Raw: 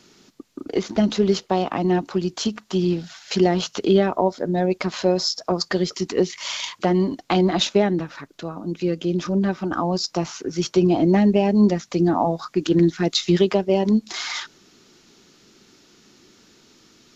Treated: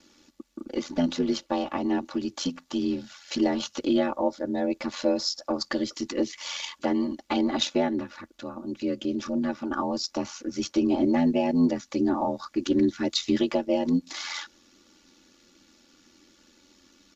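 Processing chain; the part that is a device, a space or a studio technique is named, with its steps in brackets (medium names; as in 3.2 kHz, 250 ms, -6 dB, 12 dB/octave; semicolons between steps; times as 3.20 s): ring-modulated robot voice (ring modulator 43 Hz; comb 3.5 ms, depth 99%); trim -5.5 dB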